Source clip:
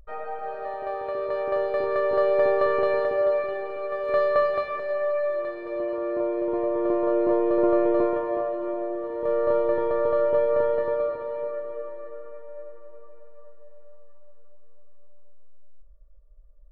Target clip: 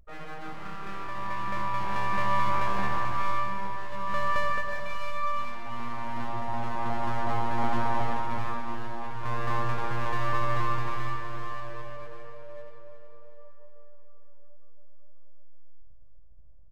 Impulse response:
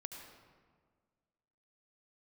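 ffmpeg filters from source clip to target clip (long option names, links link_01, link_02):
-filter_complex "[0:a]asettb=1/sr,asplit=3[link_01][link_02][link_03];[link_01]atrim=end=2.514[link_04];[link_02]atrim=start=2.51:end=4.86,asetpts=PTS-STARTPTS,afade=type=in:duration=0.004:curve=qsin,afade=type=out:start_time=2.346:duration=0.004:curve=qsin,lowpass=frequency=1400:width=0.5412,lowpass=frequency=1400:width=1.3066[link_05];[link_03]atrim=start=4.856[link_06];[link_04][link_05]acrossfade=duration=0.004:curve1=hsin:curve2=qsin[link_07];[link_07][link_06]acrossfade=duration=0.004:curve1=qsin:curve2=hsin,aeval=exprs='abs(val(0))':channel_layout=same,aecho=1:1:371|742|1113|1484|1855|2226:0.282|0.149|0.0792|0.042|0.0222|0.0118[link_08];[1:a]atrim=start_sample=2205,afade=type=out:start_time=0.23:duration=0.01,atrim=end_sample=10584[link_09];[link_08][link_09]afir=irnorm=-1:irlink=0"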